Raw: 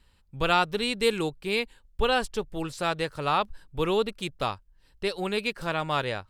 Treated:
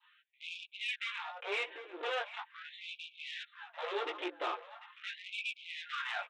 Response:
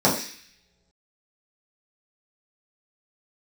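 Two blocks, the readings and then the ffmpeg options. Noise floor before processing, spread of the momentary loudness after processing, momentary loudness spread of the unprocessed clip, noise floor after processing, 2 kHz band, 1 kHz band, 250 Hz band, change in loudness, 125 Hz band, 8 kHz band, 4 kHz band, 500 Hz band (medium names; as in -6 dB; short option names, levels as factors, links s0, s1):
-62 dBFS, 9 LU, 9 LU, -70 dBFS, -7.5 dB, -13.5 dB, -20.5 dB, -12.0 dB, under -40 dB, -17.0 dB, -9.5 dB, -15.5 dB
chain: -filter_complex "[0:a]lowpass=f=3100:p=1,bandreject=f=49.39:t=h:w=4,bandreject=f=98.78:t=h:w=4,bandreject=f=148.17:t=h:w=4,bandreject=f=197.56:t=h:w=4,bandreject=f=246.95:t=h:w=4,bandreject=f=296.34:t=h:w=4,adynamicequalizer=threshold=0.00891:dfrequency=1900:dqfactor=1.4:tfrequency=1900:tqfactor=1.4:attack=5:release=100:ratio=0.375:range=2.5:mode=boostabove:tftype=bell,aecho=1:1:5.7:0.96,acompressor=threshold=0.0447:ratio=6,aresample=8000,asoftclip=type=hard:threshold=0.0158,aresample=44100,flanger=delay=15:depth=2.5:speed=1.1,asoftclip=type=tanh:threshold=0.0178,asplit=2[s0][s1];[s1]adelay=743,lowpass=f=2200:p=1,volume=0.266,asplit=2[s2][s3];[s3]adelay=743,lowpass=f=2200:p=1,volume=0.32,asplit=2[s4][s5];[s5]adelay=743,lowpass=f=2200:p=1,volume=0.32[s6];[s2][s4][s6]amix=inputs=3:normalize=0[s7];[s0][s7]amix=inputs=2:normalize=0,afftfilt=real='re*gte(b*sr/1024,260*pow(2300/260,0.5+0.5*sin(2*PI*0.41*pts/sr)))':imag='im*gte(b*sr/1024,260*pow(2300/260,0.5+0.5*sin(2*PI*0.41*pts/sr)))':win_size=1024:overlap=0.75,volume=2.51"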